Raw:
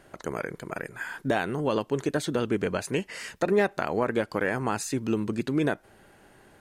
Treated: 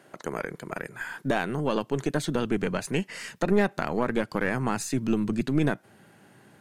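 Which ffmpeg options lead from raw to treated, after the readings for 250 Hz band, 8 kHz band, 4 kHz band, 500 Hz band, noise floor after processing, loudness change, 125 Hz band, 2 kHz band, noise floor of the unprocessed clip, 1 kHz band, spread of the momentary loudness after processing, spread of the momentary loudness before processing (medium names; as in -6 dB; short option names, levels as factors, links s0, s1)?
+2.0 dB, 0.0 dB, 0.0 dB, -1.5 dB, -56 dBFS, +0.5 dB, +2.5 dB, 0.0 dB, -57 dBFS, -0.5 dB, 10 LU, 10 LU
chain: -af "highpass=f=130:w=0.5412,highpass=f=130:w=1.3066,aeval=exprs='0.335*(cos(1*acos(clip(val(0)/0.335,-1,1)))-cos(1*PI/2))+0.0133*(cos(6*acos(clip(val(0)/0.335,-1,1)))-cos(6*PI/2))':c=same,asubboost=boost=3:cutoff=220"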